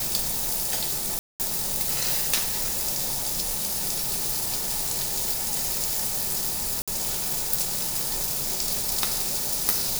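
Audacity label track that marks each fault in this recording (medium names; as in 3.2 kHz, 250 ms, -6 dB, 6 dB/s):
1.190000	1.400000	dropout 208 ms
6.820000	6.880000	dropout 56 ms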